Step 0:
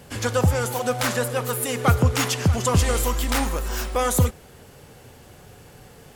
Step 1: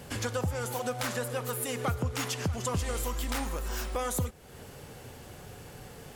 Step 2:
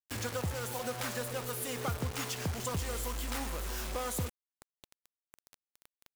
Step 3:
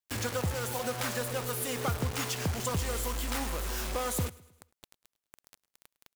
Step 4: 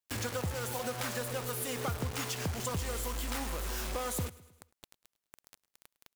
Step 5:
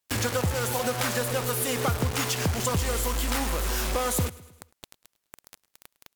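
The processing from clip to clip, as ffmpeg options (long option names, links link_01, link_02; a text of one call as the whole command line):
ffmpeg -i in.wav -af "acompressor=threshold=-34dB:ratio=2.5" out.wav
ffmpeg -i in.wav -af "acrusher=bits=5:mix=0:aa=0.000001,volume=-4.5dB" out.wav
ffmpeg -i in.wav -af "aecho=1:1:105|210|315|420:0.0841|0.0421|0.021|0.0105,volume=3.5dB" out.wav
ffmpeg -i in.wav -af "acompressor=threshold=-37dB:ratio=1.5" out.wav
ffmpeg -i in.wav -af "volume=9dB" -ar 48000 -c:a libmp3lame -b:a 192k out.mp3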